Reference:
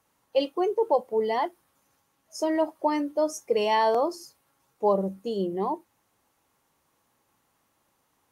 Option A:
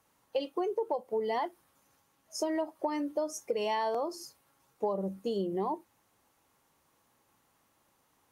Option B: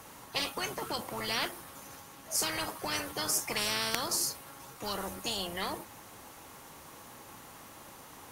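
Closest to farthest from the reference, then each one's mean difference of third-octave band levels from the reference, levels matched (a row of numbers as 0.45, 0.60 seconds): A, B; 2.5, 20.0 decibels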